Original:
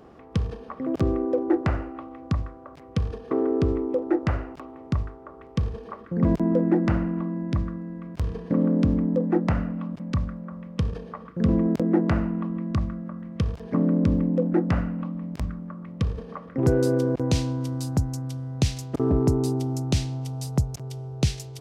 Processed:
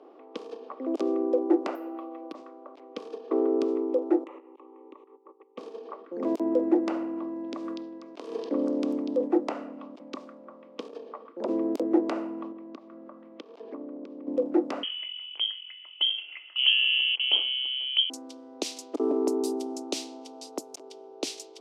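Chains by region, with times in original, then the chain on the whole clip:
1.75–2.35 s: comb 6.1 ms, depth 70% + compression 3:1, threshold -31 dBFS + careless resampling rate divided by 3×, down filtered, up hold
4.24–5.58 s: treble shelf 3.6 kHz -8.5 dB + level held to a coarse grid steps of 15 dB + static phaser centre 1 kHz, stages 8
7.19–9.28 s: repeats whose band climbs or falls 243 ms, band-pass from 3.9 kHz, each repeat 0.7 oct, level -5 dB + decay stretcher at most 40 dB/s
10.88–11.48 s: treble shelf 5.3 kHz -4 dB + transformer saturation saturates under 470 Hz
12.51–14.27 s: treble shelf 5.6 kHz -9 dB + compression, threshold -30 dBFS
14.83–18.10 s: band-stop 170 Hz, Q 5.3 + frequency inversion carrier 3.2 kHz
whole clip: level-controlled noise filter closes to 2.9 kHz, open at -19.5 dBFS; steep high-pass 280 Hz 48 dB/octave; peaking EQ 1.7 kHz -11 dB 0.81 oct

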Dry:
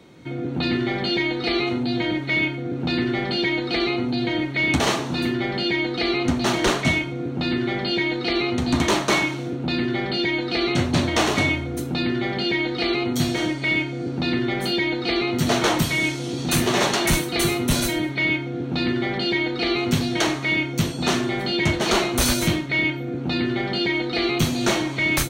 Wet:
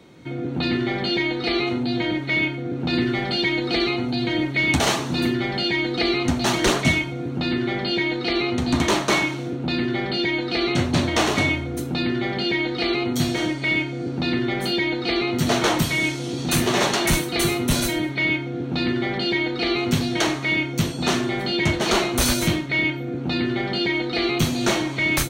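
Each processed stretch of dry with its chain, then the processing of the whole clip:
2.93–7.39 s: phaser 1.3 Hz, delay 1.5 ms, feedback 21% + treble shelf 5.5 kHz +5 dB
whole clip: none

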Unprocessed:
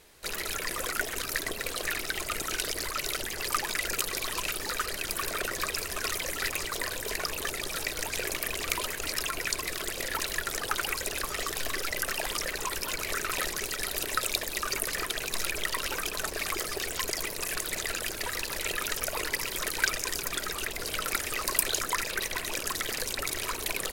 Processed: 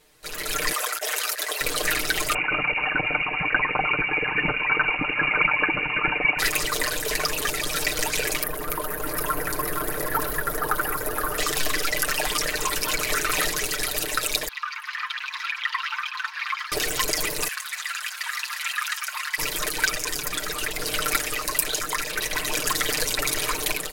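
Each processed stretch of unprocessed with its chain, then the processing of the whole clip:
0.72–1.61 s: high-pass 510 Hz 24 dB/octave + compressor with a negative ratio -35 dBFS, ratio -0.5
2.34–6.39 s: peaking EQ 510 Hz +11.5 dB 0.68 oct + frequency inversion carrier 2.8 kHz
8.43–11.38 s: high-order bell 4.2 kHz -15.5 dB 2.3 oct + delay 470 ms -6.5 dB
14.48–16.72 s: steep high-pass 940 Hz 72 dB/octave + distance through air 300 m
17.48–19.38 s: steep high-pass 1.1 kHz + tilt EQ -3 dB/octave
whole clip: comb 6.6 ms, depth 73%; level rider gain up to 11.5 dB; trim -4 dB

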